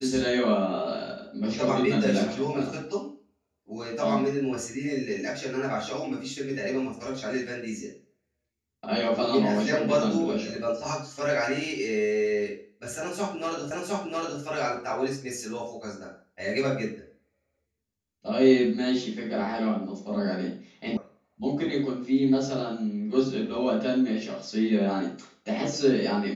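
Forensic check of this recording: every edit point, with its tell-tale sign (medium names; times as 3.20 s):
13.71 s: repeat of the last 0.71 s
20.97 s: sound stops dead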